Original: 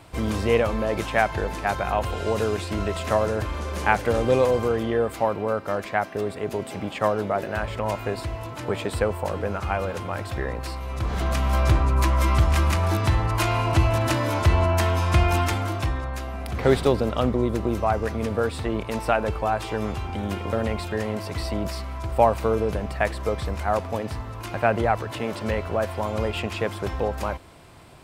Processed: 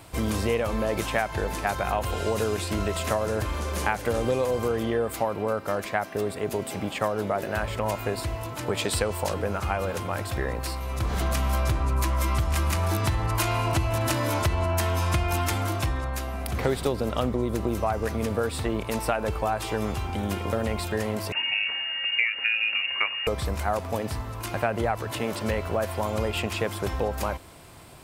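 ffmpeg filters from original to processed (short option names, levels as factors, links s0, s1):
-filter_complex "[0:a]asettb=1/sr,asplit=3[s0][s1][s2];[s0]atrim=end=8.774[s3];[s1]atrim=start=8.77:end=9.34,asetpts=PTS-STARTPTS,afade=t=in:d=0.004:c=qsin,afade=t=out:st=0.566:d=0.004:c=qsin,equalizer=f=5000:w=0.61:g=8[s4];[s2]atrim=start=9.336[s5];[s3][s4]acrossfade=d=0.004:c1=hsin:c2=qsin[s6];[s6][s5]acrossfade=d=0.004:c1=qsin:c2=hsin,asettb=1/sr,asplit=3[s7][s8][s9];[s7]atrim=end=21.324[s10];[s8]atrim=start=21.32:end=23.27,asetpts=PTS-STARTPTS,afade=t=in:d=0.004:c=qsin,afade=t=out:st=1.946:d=0.004:c=qsin,lowpass=f=2500:t=q:w=0.5098,lowpass=f=2500:t=q:w=0.6013,lowpass=f=2500:t=q:w=0.9,lowpass=f=2500:t=q:w=2.563,afreqshift=-2900[s11];[s9]atrim=start=23.266[s12];[s10][s11]acrossfade=d=0.004:c1=hsin:c2=qsin[s13];[s13][s12]acrossfade=d=0.004:c1=qsin:c2=hsin,highshelf=f=7600:g=11,acompressor=threshold=0.0891:ratio=6"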